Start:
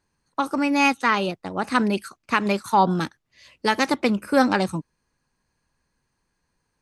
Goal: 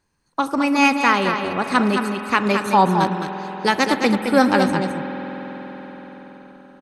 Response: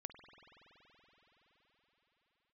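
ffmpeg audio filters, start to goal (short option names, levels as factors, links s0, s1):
-filter_complex "[0:a]aecho=1:1:215:0.473,asplit=2[s0][s1];[1:a]atrim=start_sample=2205[s2];[s1][s2]afir=irnorm=-1:irlink=0,volume=2.82[s3];[s0][s3]amix=inputs=2:normalize=0,volume=0.562"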